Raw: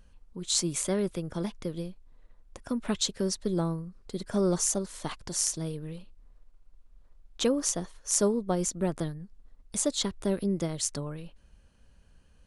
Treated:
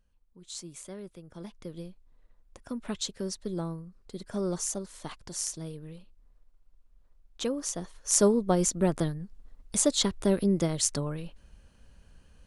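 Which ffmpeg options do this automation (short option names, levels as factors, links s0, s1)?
-af "volume=1.5,afade=t=in:st=1.25:d=0.6:silence=0.354813,afade=t=in:st=7.69:d=0.58:silence=0.375837"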